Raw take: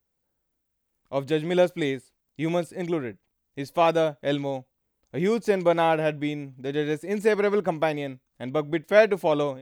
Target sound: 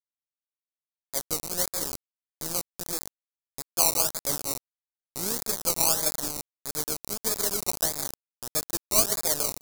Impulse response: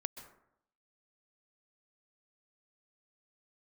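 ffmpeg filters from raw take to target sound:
-filter_complex "[0:a]acrossover=split=700|1400[link_01][link_02][link_03];[link_01]alimiter=limit=-19.5dB:level=0:latency=1:release=269[link_04];[link_04][link_02][link_03]amix=inputs=3:normalize=0,asettb=1/sr,asplit=3[link_05][link_06][link_07];[link_05]atrim=end=1.484[link_08];[link_06]atrim=start=1.48:end=2.46,asetpts=PTS-STARTPTS,afade=type=in:duration=0.004:curve=qsin,afade=type=out:start_time=0.976:duration=0.004:curve=qsin,equalizer=frequency=230:width_type=o:width=1.9:gain=-3[link_09];[link_07]atrim=start=2.456[link_10];[link_08][link_09]acrossfade=duration=0.004:curve1=hsin:curve2=qsin[link_11];[link_11][link_10]acrossfade=duration=0.004:curve1=qsin:curve2=hsin,aecho=1:1:503:0.141[link_12];[1:a]atrim=start_sample=2205[link_13];[link_12][link_13]afir=irnorm=-1:irlink=0,acrusher=samples=21:mix=1:aa=0.000001:lfo=1:lforange=12.6:lforate=1.6,aeval=exprs='0.335*(cos(1*acos(clip(val(0)/0.335,-1,1)))-cos(1*PI/2))+0.0188*(cos(7*acos(clip(val(0)/0.335,-1,1)))-cos(7*PI/2))+0.00841*(cos(8*acos(clip(val(0)/0.335,-1,1)))-cos(8*PI/2))':channel_layout=same,acrusher=bits=4:mix=0:aa=0.000001,aexciter=amount=7.1:drive=6.4:freq=4300,volume=-7.5dB"

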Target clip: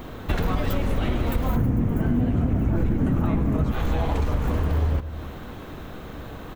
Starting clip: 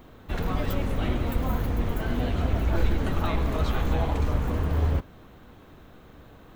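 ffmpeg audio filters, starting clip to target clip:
ffmpeg -i in.wav -filter_complex "[0:a]acontrast=87,asettb=1/sr,asplit=3[link_01][link_02][link_03];[link_01]atrim=end=1.564[link_04];[link_02]atrim=start=1.56:end=3.72,asetpts=PTS-STARTPTS,afade=type=in:duration=0.004:curve=qsin,afade=type=out:start_time=2.156:duration=0.004:curve=qsin,equalizer=frequency=125:width_type=o:width=1:gain=12,equalizer=frequency=250:width_type=o:width=1:gain=10,equalizer=frequency=4000:width_type=o:width=1:gain=-11,equalizer=frequency=16000:width_type=o:width=1:gain=-3[link_05];[link_03]atrim=start=3.716[link_06];[link_04][link_05]acrossfade=duration=0.004:curve1=hsin:curve2=qsin[link_07];[link_07][link_06]acrossfade=duration=0.004:curve1=qsin:curve2=hsin,asplit=2[link_08][link_09];[link_09]adelay=104,lowpass=frequency=2000:poles=1,volume=-17dB,asplit=2[link_10][link_11];[link_11]adelay=104,lowpass=frequency=2000:poles=1,volume=0.48,asplit=2[link_12][link_13];[link_13]adelay=104,lowpass=frequency=2000:poles=1,volume=0.48,asplit=2[link_14][link_15];[link_15]adelay=104,lowpass=frequency=2000:poles=1,volume=0.48[link_16];[link_08][link_10][link_12][link_14][link_16]amix=inputs=5:normalize=0,acompressor=threshold=-25dB:ratio=6,volume=5dB" out.wav

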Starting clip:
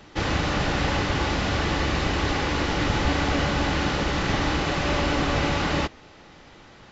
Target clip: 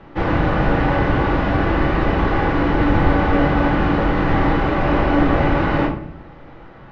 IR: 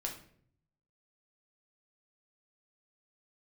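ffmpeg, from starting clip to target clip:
-filter_complex "[0:a]lowpass=1600[link_01];[1:a]atrim=start_sample=2205[link_02];[link_01][link_02]afir=irnorm=-1:irlink=0,volume=7dB"

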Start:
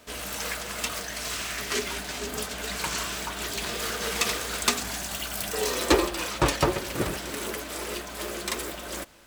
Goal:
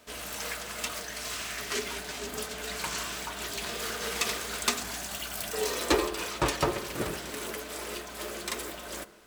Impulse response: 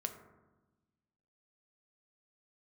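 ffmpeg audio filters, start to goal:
-filter_complex "[0:a]asplit=2[link_01][link_02];[1:a]atrim=start_sample=2205,lowshelf=frequency=150:gain=-10.5[link_03];[link_02][link_03]afir=irnorm=-1:irlink=0,volume=-1dB[link_04];[link_01][link_04]amix=inputs=2:normalize=0,volume=-8.5dB"

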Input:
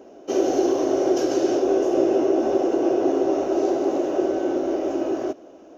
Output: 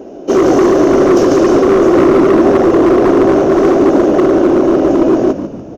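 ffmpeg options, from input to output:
ffmpeg -i in.wav -filter_complex "[0:a]lowshelf=frequency=460:gain=11,acontrast=64,asoftclip=type=hard:threshold=-8.5dB,asplit=5[link_01][link_02][link_03][link_04][link_05];[link_02]adelay=145,afreqshift=-61,volume=-10dB[link_06];[link_03]adelay=290,afreqshift=-122,volume=-17.5dB[link_07];[link_04]adelay=435,afreqshift=-183,volume=-25.1dB[link_08];[link_05]adelay=580,afreqshift=-244,volume=-32.6dB[link_09];[link_01][link_06][link_07][link_08][link_09]amix=inputs=5:normalize=0,volume=2.5dB" out.wav

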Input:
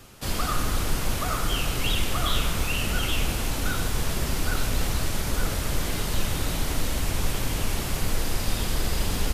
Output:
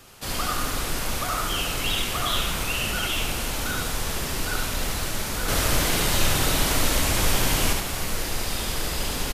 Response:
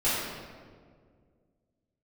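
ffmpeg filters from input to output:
-filter_complex "[0:a]lowshelf=frequency=320:gain=-7,asettb=1/sr,asplit=3[link_01][link_02][link_03];[link_01]atrim=end=5.484[link_04];[link_02]atrim=start=5.48:end=7.73,asetpts=PTS-STARTPTS,afade=type=in:duration=0.004:curve=qsin,afade=type=out:start_time=2.246:duration=0.004:curve=qsin,acontrast=54[link_05];[link_03]atrim=start=7.726[link_06];[link_04][link_05]acrossfade=duration=0.004:curve1=hsin:curve2=qsin[link_07];[link_07][link_06]acrossfade=duration=0.004:curve1=qsin:curve2=hsin,aecho=1:1:72:0.668,volume=1dB"

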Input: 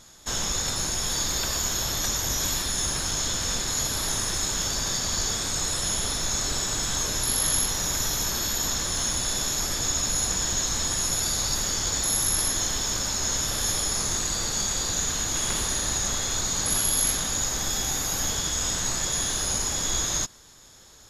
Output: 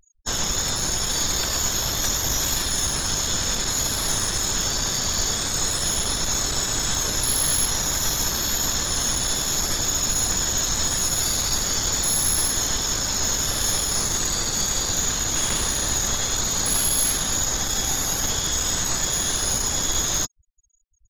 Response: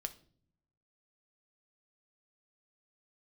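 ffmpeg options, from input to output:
-af "afftfilt=real='re*gte(hypot(re,im),0.0141)':imag='im*gte(hypot(re,im),0.0141)':win_size=1024:overlap=0.75,aeval=exprs='0.282*(cos(1*acos(clip(val(0)/0.282,-1,1)))-cos(1*PI/2))+0.0355*(cos(5*acos(clip(val(0)/0.282,-1,1)))-cos(5*PI/2))+0.0447*(cos(6*acos(clip(val(0)/0.282,-1,1)))-cos(6*PI/2))+0.00891*(cos(8*acos(clip(val(0)/0.282,-1,1)))-cos(8*PI/2))':channel_layout=same"

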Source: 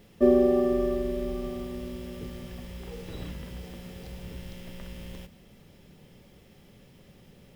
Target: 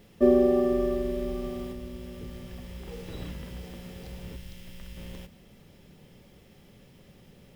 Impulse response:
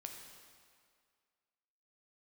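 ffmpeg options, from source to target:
-filter_complex "[0:a]asettb=1/sr,asplit=3[link_01][link_02][link_03];[link_01]atrim=end=1.724[link_04];[link_02]atrim=start=1.72:end=2.88,asetpts=PTS-STARTPTS,afade=type=in:duration=0.004:curve=qsin,afade=type=out:start_time=1.156:duration=0.004:curve=qsin,acrossover=split=130[link_05][link_06];[link_06]acompressor=threshold=-45dB:ratio=1.5[link_07];[link_05][link_07]amix=inputs=2:normalize=0[link_08];[link_03]atrim=start=2.876[link_09];[link_04][link_08]acrossfade=duration=0.004:curve1=hsin:curve2=qsin[link_10];[link_10][link_09]acrossfade=duration=0.004:curve1=qsin:curve2=hsin,asettb=1/sr,asplit=3[link_11][link_12][link_13];[link_11]atrim=end=4.364[link_14];[link_12]atrim=start=4.36:end=4.97,asetpts=PTS-STARTPTS,afade=type=in:duration=0.004:curve=qsin,afade=type=out:start_time=0.606:duration=0.004:curve=qsin,equalizer=frequency=500:width=0.34:gain=-8[link_15];[link_13]atrim=start=4.966[link_16];[link_14][link_15]acrossfade=duration=0.004:curve1=hsin:curve2=qsin[link_17];[link_17][link_16]acrossfade=duration=0.004:curve1=qsin:curve2=hsin"

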